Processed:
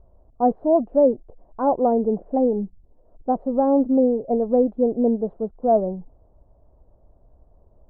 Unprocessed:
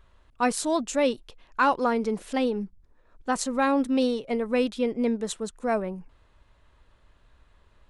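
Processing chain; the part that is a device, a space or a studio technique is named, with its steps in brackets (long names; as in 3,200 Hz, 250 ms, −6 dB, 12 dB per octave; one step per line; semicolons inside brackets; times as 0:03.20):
under water (low-pass filter 690 Hz 24 dB per octave; parametric band 700 Hz +8 dB 0.58 octaves)
level +5 dB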